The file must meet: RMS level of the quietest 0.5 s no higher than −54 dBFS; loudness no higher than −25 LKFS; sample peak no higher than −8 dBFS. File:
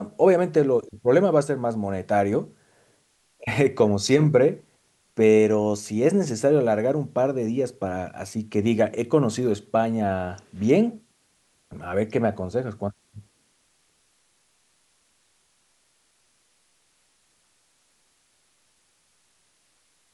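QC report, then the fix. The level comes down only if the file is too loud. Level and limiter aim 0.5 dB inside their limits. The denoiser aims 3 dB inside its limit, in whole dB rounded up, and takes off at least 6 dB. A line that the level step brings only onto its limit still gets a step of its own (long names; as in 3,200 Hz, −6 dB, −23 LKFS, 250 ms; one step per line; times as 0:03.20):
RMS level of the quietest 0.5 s −66 dBFS: in spec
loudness −22.5 LKFS: out of spec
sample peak −6.0 dBFS: out of spec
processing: level −3 dB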